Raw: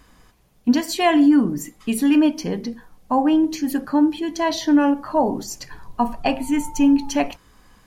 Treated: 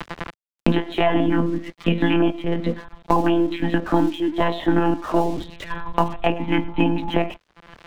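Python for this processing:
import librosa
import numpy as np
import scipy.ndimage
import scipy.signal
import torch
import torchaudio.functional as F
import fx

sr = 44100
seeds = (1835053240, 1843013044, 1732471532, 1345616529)

p1 = fx.lpc_monotone(x, sr, seeds[0], pitch_hz=170.0, order=16)
p2 = fx.peak_eq(p1, sr, hz=100.0, db=-8.0, octaves=0.7)
p3 = p2 + fx.echo_single(p2, sr, ms=103, db=-23.5, dry=0)
p4 = np.sign(p3) * np.maximum(np.abs(p3) - 10.0 ** (-48.5 / 20.0), 0.0)
y = fx.band_squash(p4, sr, depth_pct=100)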